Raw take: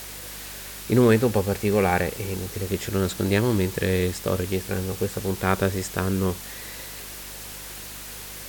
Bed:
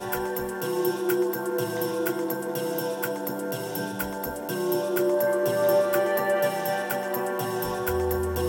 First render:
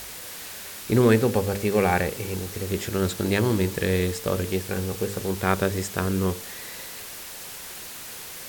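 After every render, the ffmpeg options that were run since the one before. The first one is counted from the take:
-af "bandreject=f=50:t=h:w=4,bandreject=f=100:t=h:w=4,bandreject=f=150:t=h:w=4,bandreject=f=200:t=h:w=4,bandreject=f=250:t=h:w=4,bandreject=f=300:t=h:w=4,bandreject=f=350:t=h:w=4,bandreject=f=400:t=h:w=4,bandreject=f=450:t=h:w=4,bandreject=f=500:t=h:w=4,bandreject=f=550:t=h:w=4,bandreject=f=600:t=h:w=4"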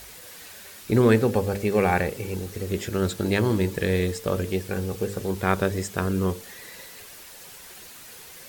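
-af "afftdn=nr=7:nf=-39"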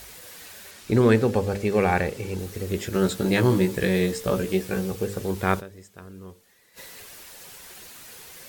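-filter_complex "[0:a]asettb=1/sr,asplit=3[s0][s1][s2];[s0]atrim=end=0.714[s3];[s1]atrim=start=0.71:end=2.39,asetpts=PTS-STARTPTS,afade=t=in:d=0.004:c=qsin,afade=t=out:st=1.676:d=0.004:c=qsin,acrossover=split=9100[s4][s5];[s5]acompressor=threshold=0.00251:ratio=4:attack=1:release=60[s6];[s4][s6]amix=inputs=2:normalize=0[s7];[s2]atrim=start=2.386[s8];[s3][s7]acrossfade=d=0.004:c1=hsin:c2=qsin[s9];[s9][s8]acrossfade=d=0.004:c1=qsin:c2=hsin,asettb=1/sr,asplit=3[s10][s11][s12];[s10]atrim=end=2.924[s13];[s11]atrim=start=2.92:end=4.91,asetpts=PTS-STARTPTS,afade=t=in:d=0.004:c=qsin,afade=t=out:st=1.986:d=0.004:c=qsin,asplit=2[s14][s15];[s15]adelay=16,volume=0.708[s16];[s14][s16]amix=inputs=2:normalize=0,atrim=end_sample=87759[s17];[s12]atrim=start=4.906[s18];[s13][s17]acrossfade=d=0.004:c1=hsin:c2=qsin[s19];[s19][s18]acrossfade=d=0.004:c1=qsin:c2=hsin,asplit=3[s20][s21][s22];[s20]atrim=end=5.73,asetpts=PTS-STARTPTS,afade=t=out:st=5.59:d=0.14:c=exp:silence=0.125893[s23];[s21]atrim=start=5.73:end=6.64,asetpts=PTS-STARTPTS,volume=0.126[s24];[s22]atrim=start=6.64,asetpts=PTS-STARTPTS,afade=t=in:d=0.14:c=exp:silence=0.125893[s25];[s23][s24][s25]concat=n=3:v=0:a=1"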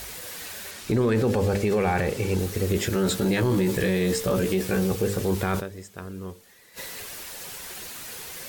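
-af "acontrast=49,alimiter=limit=0.168:level=0:latency=1:release=14"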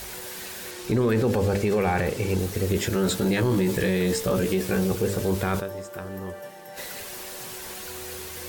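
-filter_complex "[1:a]volume=0.158[s0];[0:a][s0]amix=inputs=2:normalize=0"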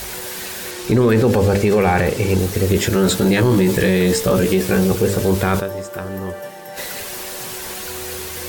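-af "volume=2.51"

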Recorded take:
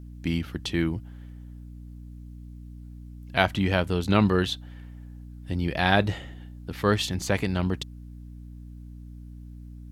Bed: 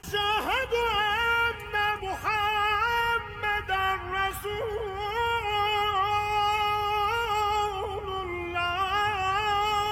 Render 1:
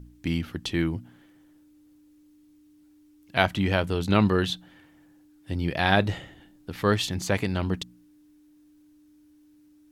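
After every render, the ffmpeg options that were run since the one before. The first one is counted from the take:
-af "bandreject=f=60:t=h:w=4,bandreject=f=120:t=h:w=4,bandreject=f=180:t=h:w=4,bandreject=f=240:t=h:w=4"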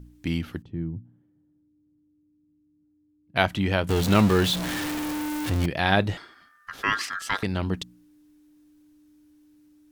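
-filter_complex "[0:a]asettb=1/sr,asplit=3[s0][s1][s2];[s0]atrim=end=0.624[s3];[s1]atrim=start=0.62:end=3.36,asetpts=PTS-STARTPTS,afade=t=in:d=0.004:c=qsin,afade=t=out:st=2.736:d=0.004:c=qsin,bandpass=f=130:t=q:w=1.3[s4];[s2]atrim=start=3.356[s5];[s3][s4]acrossfade=d=0.004:c1=hsin:c2=qsin[s6];[s6][s5]acrossfade=d=0.004:c1=qsin:c2=hsin,asettb=1/sr,asplit=3[s7][s8][s9];[s7]atrim=end=3.894[s10];[s8]atrim=start=3.89:end=5.66,asetpts=PTS-STARTPTS,afade=t=in:d=0.004:c=qsin,afade=t=out:st=1.766:d=0.004:c=qsin,aeval=exprs='val(0)+0.5*0.0668*sgn(val(0))':c=same[s11];[s9]atrim=start=5.656[s12];[s10][s11]acrossfade=d=0.004:c1=hsin:c2=qsin[s13];[s13][s12]acrossfade=d=0.004:c1=qsin:c2=hsin,asettb=1/sr,asplit=3[s14][s15][s16];[s14]atrim=end=6.174[s17];[s15]atrim=start=6.17:end=7.43,asetpts=PTS-STARTPTS,afade=t=in:d=0.004:c=qsin,afade=t=out:st=1.256:d=0.004:c=qsin,aeval=exprs='val(0)*sin(2*PI*1500*n/s)':c=same[s18];[s16]atrim=start=7.426[s19];[s17][s18]acrossfade=d=0.004:c1=hsin:c2=qsin[s20];[s20][s19]acrossfade=d=0.004:c1=qsin:c2=hsin"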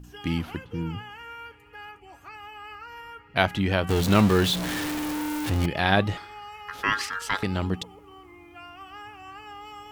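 -filter_complex "[1:a]volume=0.15[s0];[0:a][s0]amix=inputs=2:normalize=0"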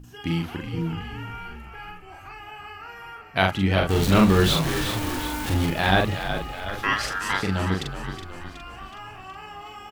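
-filter_complex "[0:a]asplit=2[s0][s1];[s1]adelay=42,volume=0.708[s2];[s0][s2]amix=inputs=2:normalize=0,asplit=2[s3][s4];[s4]asplit=7[s5][s6][s7][s8][s9][s10][s11];[s5]adelay=370,afreqshift=-51,volume=0.355[s12];[s6]adelay=740,afreqshift=-102,volume=0.2[s13];[s7]adelay=1110,afreqshift=-153,volume=0.111[s14];[s8]adelay=1480,afreqshift=-204,volume=0.0624[s15];[s9]adelay=1850,afreqshift=-255,volume=0.0351[s16];[s10]adelay=2220,afreqshift=-306,volume=0.0195[s17];[s11]adelay=2590,afreqshift=-357,volume=0.011[s18];[s12][s13][s14][s15][s16][s17][s18]amix=inputs=7:normalize=0[s19];[s3][s19]amix=inputs=2:normalize=0"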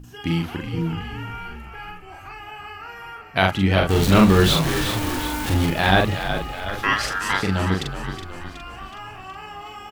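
-af "volume=1.41,alimiter=limit=0.794:level=0:latency=1"

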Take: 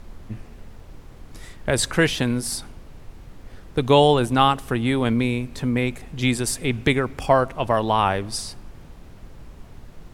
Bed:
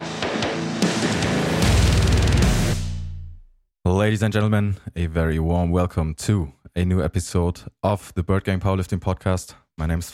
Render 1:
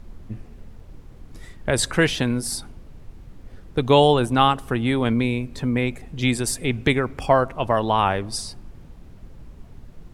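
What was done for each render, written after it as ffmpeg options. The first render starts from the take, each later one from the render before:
-af "afftdn=nr=6:nf=-44"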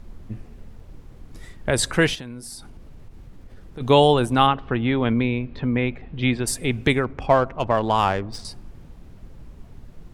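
-filter_complex "[0:a]asplit=3[s0][s1][s2];[s0]afade=t=out:st=2.14:d=0.02[s3];[s1]acompressor=threshold=0.0141:ratio=3:attack=3.2:release=140:knee=1:detection=peak,afade=t=in:st=2.14:d=0.02,afade=t=out:st=3.8:d=0.02[s4];[s2]afade=t=in:st=3.8:d=0.02[s5];[s3][s4][s5]amix=inputs=3:normalize=0,asplit=3[s6][s7][s8];[s6]afade=t=out:st=4.46:d=0.02[s9];[s7]lowpass=f=3600:w=0.5412,lowpass=f=3600:w=1.3066,afade=t=in:st=4.46:d=0.02,afade=t=out:st=6.46:d=0.02[s10];[s8]afade=t=in:st=6.46:d=0.02[s11];[s9][s10][s11]amix=inputs=3:normalize=0,asettb=1/sr,asplit=3[s12][s13][s14];[s12]atrim=end=7.044[s15];[s13]atrim=start=7.04:end=8.45,asetpts=PTS-STARTPTS,afade=t=in:d=0.004:c=qsin,afade=t=out:st=1.406:d=0.004:c=qsin,adynamicsmooth=sensitivity=2:basefreq=2400[s16];[s14]atrim=start=8.446[s17];[s15][s16]acrossfade=d=0.004:c1=hsin:c2=qsin[s18];[s18][s17]acrossfade=d=0.004:c1=qsin:c2=hsin"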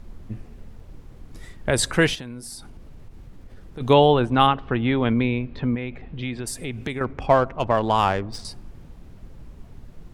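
-filter_complex "[0:a]asettb=1/sr,asplit=3[s0][s1][s2];[s0]atrim=end=3.934[s3];[s1]atrim=start=3.93:end=4.4,asetpts=PTS-STARTPTS,afade=t=in:d=0.004:c=qsin,afade=t=out:st=0.466:d=0.004:c=qsin,lowpass=3300[s4];[s2]atrim=start=4.396[s5];[s3][s4]acrossfade=d=0.004:c1=hsin:c2=qsin[s6];[s6][s5]acrossfade=d=0.004:c1=qsin:c2=hsin,asettb=1/sr,asplit=3[s7][s8][s9];[s7]atrim=end=5.754[s10];[s8]atrim=start=5.75:end=7.01,asetpts=PTS-STARTPTS,afade=t=in:d=0.004:c=qsin,afade=t=out:st=1.256:d=0.004:c=qsin,acompressor=threshold=0.0355:ratio=2.5:attack=3.2:release=140:knee=1:detection=peak[s11];[s9]atrim=start=7.006[s12];[s10][s11]acrossfade=d=0.004:c1=hsin:c2=qsin[s13];[s13][s12]acrossfade=d=0.004:c1=qsin:c2=hsin"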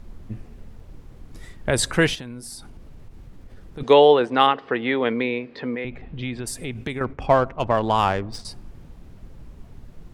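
-filter_complex "[0:a]asettb=1/sr,asplit=3[s0][s1][s2];[s0]atrim=end=3.834[s3];[s1]atrim=start=3.83:end=5.85,asetpts=PTS-STARTPTS,afade=t=in:d=0.004:c=qsin,afade=t=out:st=2.016:d=0.004:c=qsin,highpass=290,equalizer=f=470:t=q:w=4:g=7,equalizer=f=1900:t=q:w=4:g=7,equalizer=f=4800:t=q:w=4:g=8,lowpass=f=9100:w=0.5412,lowpass=f=9100:w=1.3066[s4];[s2]atrim=start=5.846[s5];[s3][s4]acrossfade=d=0.004:c1=hsin:c2=qsin[s6];[s6][s5]acrossfade=d=0.004:c1=qsin:c2=hsin,asettb=1/sr,asplit=3[s7][s8][s9];[s7]atrim=end=6.744[s10];[s8]atrim=start=6.74:end=8.46,asetpts=PTS-STARTPTS,afade=t=in:d=0.004:c=qsin,afade=t=out:st=1.716:d=0.004:c=qsin,agate=range=0.0224:threshold=0.0178:ratio=3:release=100:detection=peak[s11];[s9]atrim=start=8.456[s12];[s10][s11]acrossfade=d=0.004:c1=hsin:c2=qsin[s13];[s13][s12]acrossfade=d=0.004:c1=qsin:c2=hsin"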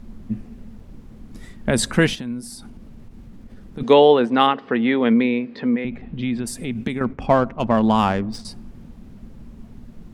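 -af "equalizer=f=220:w=2.8:g=13"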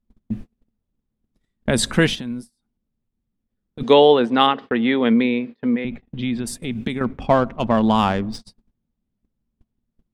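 -af "agate=range=0.0158:threshold=0.0282:ratio=16:detection=peak,equalizer=f=3500:t=o:w=0.45:g=4.5"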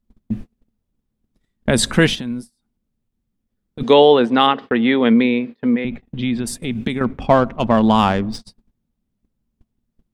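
-af "volume=1.41,alimiter=limit=0.891:level=0:latency=1"

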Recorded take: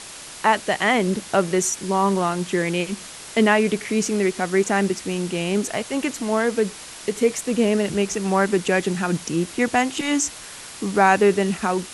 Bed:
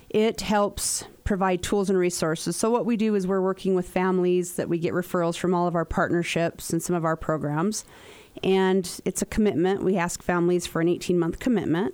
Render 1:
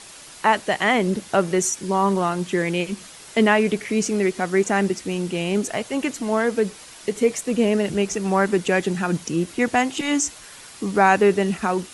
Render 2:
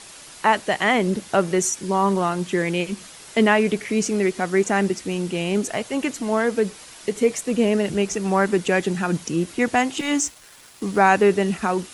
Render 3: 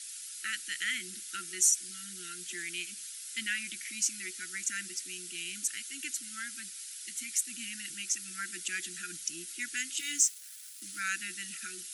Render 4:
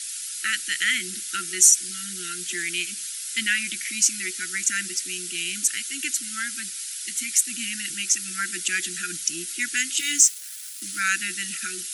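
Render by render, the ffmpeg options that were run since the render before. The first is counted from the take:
-af "afftdn=nr=6:nf=-39"
-filter_complex "[0:a]asettb=1/sr,asplit=3[s0][s1][s2];[s0]atrim=end=9.994[s3];[s1]atrim=start=9.99:end=11,asetpts=PTS-STARTPTS,afade=t=in:d=0.004:c=qsin,afade=t=out:st=1.006:d=0.004:c=qsin,aeval=exprs='sgn(val(0))*max(abs(val(0))-0.00531,0)':c=same[s4];[s2]atrim=start=10.996[s5];[s3][s4]acrossfade=d=0.004:c1=hsin:c2=qsin[s6];[s6][s5]acrossfade=d=0.004:c1=qsin:c2=hsin"
-af "afftfilt=real='re*(1-between(b*sr/4096,370,1300))':imag='im*(1-between(b*sr/4096,370,1300))':win_size=4096:overlap=0.75,aderivative"
-af "volume=3.35,alimiter=limit=0.708:level=0:latency=1"

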